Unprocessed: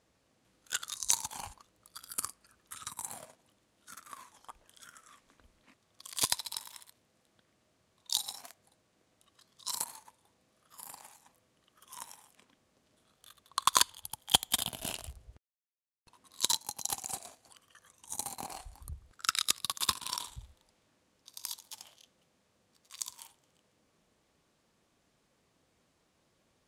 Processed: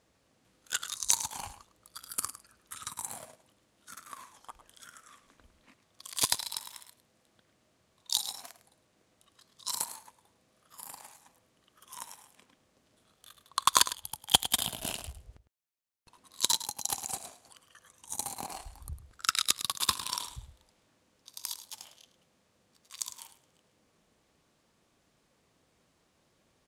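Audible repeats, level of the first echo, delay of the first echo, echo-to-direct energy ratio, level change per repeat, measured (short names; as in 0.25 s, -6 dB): 1, -13.5 dB, 0.105 s, -13.5 dB, no steady repeat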